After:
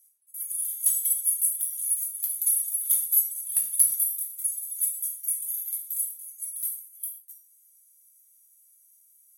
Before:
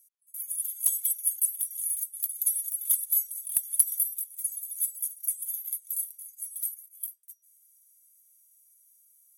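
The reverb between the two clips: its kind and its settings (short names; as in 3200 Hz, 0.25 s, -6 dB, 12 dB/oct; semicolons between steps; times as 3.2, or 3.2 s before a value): non-linear reverb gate 0.16 s falling, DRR 0 dB; gain -1 dB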